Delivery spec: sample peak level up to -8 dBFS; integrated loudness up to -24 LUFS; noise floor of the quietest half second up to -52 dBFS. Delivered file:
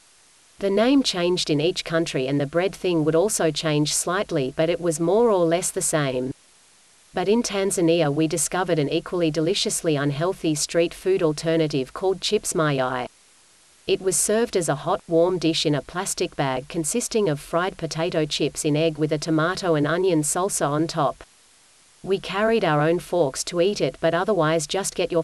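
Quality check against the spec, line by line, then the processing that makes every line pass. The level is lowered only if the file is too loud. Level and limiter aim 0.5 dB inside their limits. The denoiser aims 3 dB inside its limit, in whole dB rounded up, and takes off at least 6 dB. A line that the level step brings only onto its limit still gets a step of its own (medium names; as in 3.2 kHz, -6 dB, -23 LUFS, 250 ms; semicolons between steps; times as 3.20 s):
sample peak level -7.5 dBFS: fail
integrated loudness -22.5 LUFS: fail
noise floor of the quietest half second -55 dBFS: pass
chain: trim -2 dB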